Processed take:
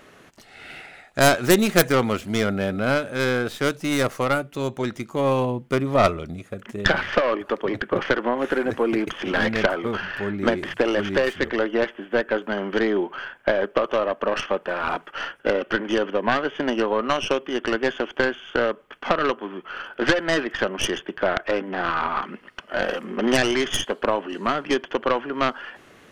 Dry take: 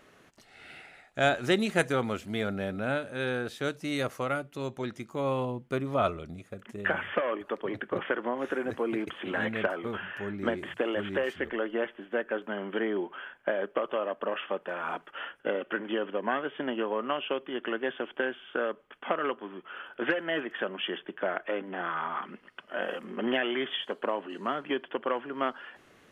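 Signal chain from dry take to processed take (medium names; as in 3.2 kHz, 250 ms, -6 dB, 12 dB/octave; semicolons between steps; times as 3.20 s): tracing distortion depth 0.4 ms; trim +8.5 dB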